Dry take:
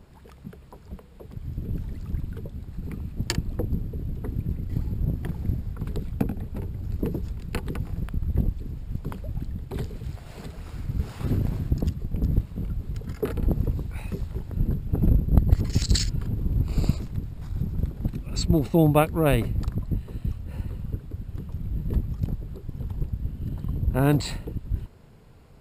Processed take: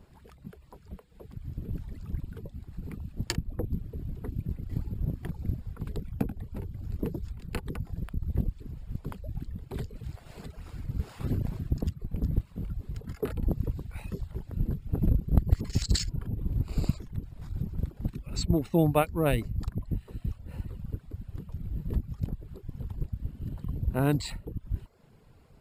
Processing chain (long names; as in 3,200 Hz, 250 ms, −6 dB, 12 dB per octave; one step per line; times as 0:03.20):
reverb reduction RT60 0.56 s
level −4 dB